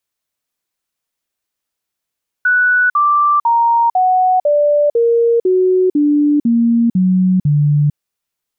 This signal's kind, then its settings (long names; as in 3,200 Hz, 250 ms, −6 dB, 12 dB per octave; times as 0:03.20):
stepped sweep 1,480 Hz down, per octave 3, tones 11, 0.45 s, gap 0.05 s −9 dBFS